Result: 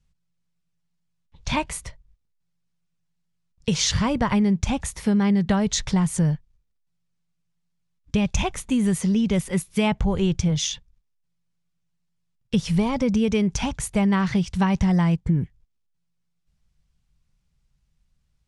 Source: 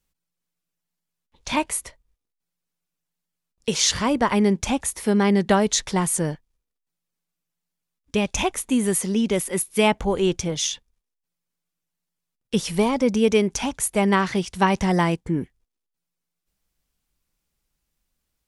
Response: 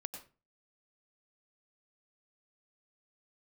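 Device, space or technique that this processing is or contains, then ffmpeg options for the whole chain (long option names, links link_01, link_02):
jukebox: -af "lowpass=7200,lowshelf=frequency=210:width_type=q:width=1.5:gain=11,acompressor=threshold=-18dB:ratio=4"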